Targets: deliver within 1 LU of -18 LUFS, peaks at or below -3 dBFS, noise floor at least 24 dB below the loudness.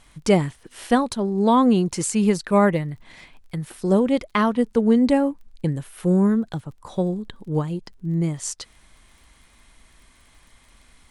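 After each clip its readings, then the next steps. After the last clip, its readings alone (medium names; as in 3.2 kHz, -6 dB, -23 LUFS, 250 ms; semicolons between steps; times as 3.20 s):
tick rate 26 per s; loudness -21.5 LUFS; peak level -5.0 dBFS; loudness target -18.0 LUFS
-> de-click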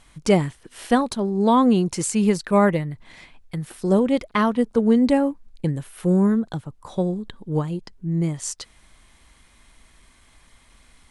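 tick rate 0.090 per s; loudness -21.5 LUFS; peak level -5.0 dBFS; loudness target -18.0 LUFS
-> trim +3.5 dB; peak limiter -3 dBFS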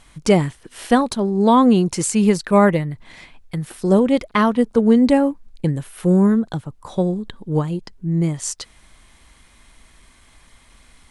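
loudness -18.0 LUFS; peak level -3.0 dBFS; noise floor -52 dBFS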